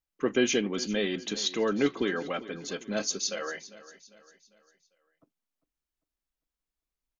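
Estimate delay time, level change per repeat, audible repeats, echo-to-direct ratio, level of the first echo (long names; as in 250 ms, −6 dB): 399 ms, −7.5 dB, 3, −16.0 dB, −17.0 dB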